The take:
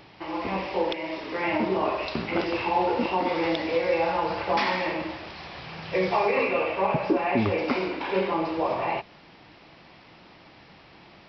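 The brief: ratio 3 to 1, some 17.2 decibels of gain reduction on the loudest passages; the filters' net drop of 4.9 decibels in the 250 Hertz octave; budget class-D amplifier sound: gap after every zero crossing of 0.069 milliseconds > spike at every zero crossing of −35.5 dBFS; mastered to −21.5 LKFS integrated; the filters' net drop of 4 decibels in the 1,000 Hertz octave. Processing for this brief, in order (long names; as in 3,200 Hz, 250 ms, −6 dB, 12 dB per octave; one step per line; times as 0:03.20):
parametric band 250 Hz −7 dB
parametric band 1,000 Hz −4.5 dB
downward compressor 3 to 1, threshold −47 dBFS
gap after every zero crossing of 0.069 ms
spike at every zero crossing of −35.5 dBFS
level +21.5 dB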